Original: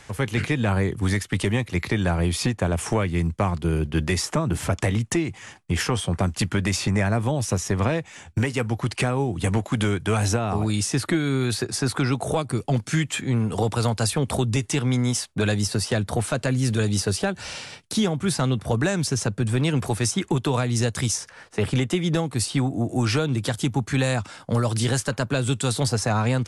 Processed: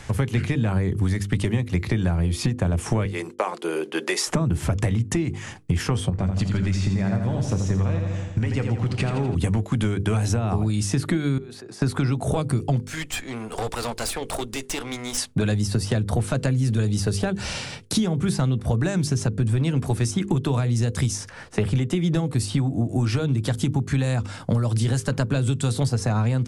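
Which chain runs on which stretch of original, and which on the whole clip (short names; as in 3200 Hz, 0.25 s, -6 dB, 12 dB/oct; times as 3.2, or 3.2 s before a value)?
3.05–4.27 HPF 390 Hz 24 dB/oct + notch 690 Hz, Q 17 + expander -52 dBFS
6.1–9.35 LPF 6800 Hz + resonator 96 Hz, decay 0.53 s + feedback echo 83 ms, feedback 59%, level -7 dB
11.38–11.82 HPF 420 Hz + tilt -2.5 dB/oct + level quantiser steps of 23 dB
12.85–15.18 HPF 530 Hz + tube stage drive 27 dB, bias 0.7
whole clip: low shelf 280 Hz +11 dB; notches 50/100/150/200/250/300/350/400/450/500 Hz; compressor 6:1, threshold -23 dBFS; gain +3.5 dB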